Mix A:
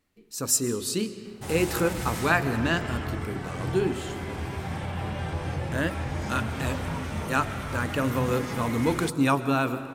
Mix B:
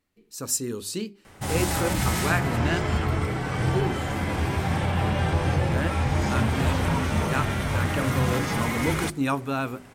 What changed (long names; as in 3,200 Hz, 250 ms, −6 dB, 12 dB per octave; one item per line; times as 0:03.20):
background +7.5 dB
reverb: off